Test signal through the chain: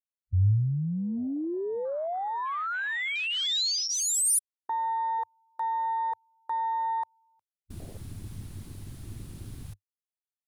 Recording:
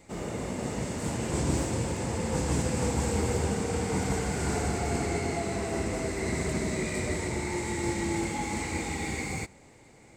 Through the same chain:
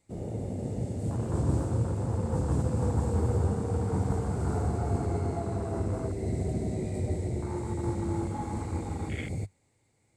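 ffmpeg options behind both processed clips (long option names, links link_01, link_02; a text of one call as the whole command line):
ffmpeg -i in.wav -af "afwtdn=0.0224,equalizer=frequency=100:width_type=o:width=0.67:gain=11,equalizer=frequency=4000:width_type=o:width=0.67:gain=4,equalizer=frequency=10000:width_type=o:width=0.67:gain=11,volume=-2.5dB" out.wav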